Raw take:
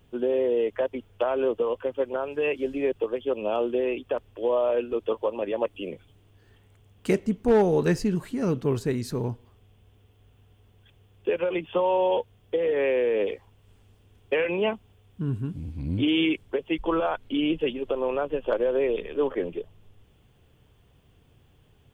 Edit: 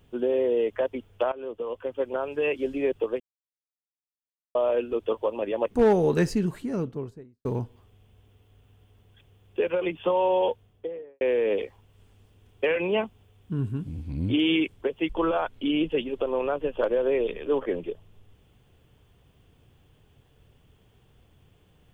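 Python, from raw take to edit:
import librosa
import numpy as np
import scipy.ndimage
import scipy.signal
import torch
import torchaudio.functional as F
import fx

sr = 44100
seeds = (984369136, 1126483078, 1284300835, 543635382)

y = fx.studio_fade_out(x, sr, start_s=8.06, length_s=1.08)
y = fx.studio_fade_out(y, sr, start_s=12.15, length_s=0.75)
y = fx.edit(y, sr, fx.fade_in_from(start_s=1.32, length_s=0.84, floor_db=-17.0),
    fx.silence(start_s=3.2, length_s=1.35),
    fx.cut(start_s=5.71, length_s=1.69), tone=tone)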